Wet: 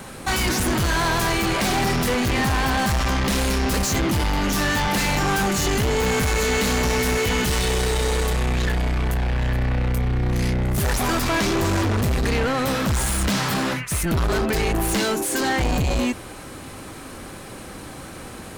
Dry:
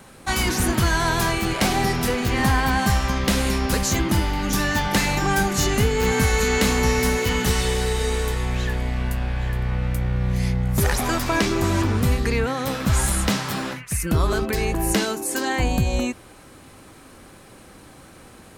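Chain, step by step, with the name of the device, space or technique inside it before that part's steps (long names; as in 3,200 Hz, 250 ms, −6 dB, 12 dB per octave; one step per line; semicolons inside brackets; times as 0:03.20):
saturation between pre-emphasis and de-emphasis (high-shelf EQ 7,700 Hz +8 dB; soft clipping −27.5 dBFS, distortion −6 dB; high-shelf EQ 7,700 Hz −8 dB)
level +9 dB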